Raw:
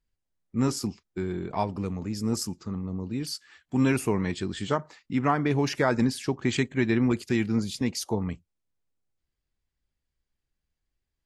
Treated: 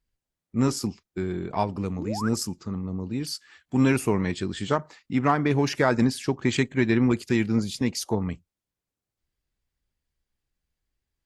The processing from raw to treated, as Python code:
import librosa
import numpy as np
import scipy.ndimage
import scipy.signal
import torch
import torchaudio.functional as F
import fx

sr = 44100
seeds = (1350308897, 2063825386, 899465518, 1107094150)

y = fx.spec_paint(x, sr, seeds[0], shape='rise', start_s=1.98, length_s=0.31, low_hz=240.0, high_hz=1700.0, level_db=-35.0)
y = fx.cheby_harmonics(y, sr, harmonics=(7,), levels_db=(-35,), full_scale_db=-10.5)
y = y * 10.0 ** (2.5 / 20.0)